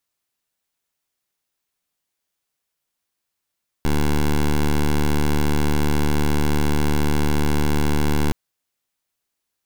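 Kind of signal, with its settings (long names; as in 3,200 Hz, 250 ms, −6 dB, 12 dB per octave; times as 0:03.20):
pulse wave 74.2 Hz, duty 12% −17.5 dBFS 4.47 s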